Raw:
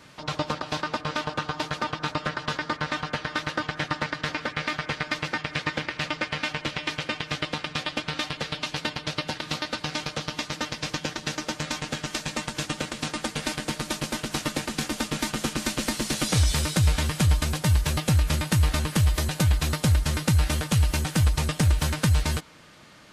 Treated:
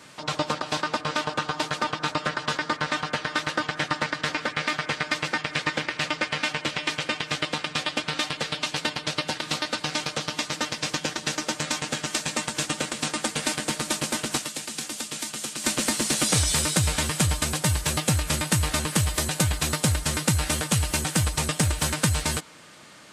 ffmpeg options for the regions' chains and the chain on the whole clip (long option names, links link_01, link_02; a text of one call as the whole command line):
ffmpeg -i in.wav -filter_complex "[0:a]asettb=1/sr,asplit=3[link_01][link_02][link_03];[link_01]atrim=end=14.374[link_04];[link_02]atrim=start=14.37:end=15.64,asetpts=PTS-STARTPTS,afade=type=in:duration=0.004:curve=qsin,afade=type=out:start_time=1.266:duration=0.004:curve=qsin,highpass=frequency=150:poles=1,acrossover=split=190|2600[link_05][link_06][link_07];[link_05]acompressor=threshold=-46dB:ratio=4[link_08];[link_06]acompressor=threshold=-41dB:ratio=4[link_09];[link_07]acompressor=threshold=-36dB:ratio=4[link_10];[link_08][link_09][link_10]amix=inputs=3:normalize=0[link_11];[link_03]atrim=start=15.636[link_12];[link_04][link_11]acrossfade=duration=0.004:curve1=hsin:curve2=qsin[link_13];[link_13][link_12]acrossfade=duration=0.004:curve1=qsin:curve2=hsin,highpass=frequency=180:poles=1,equalizer=frequency=8300:width_type=o:width=0.61:gain=7,acontrast=40,volume=-3dB" out.wav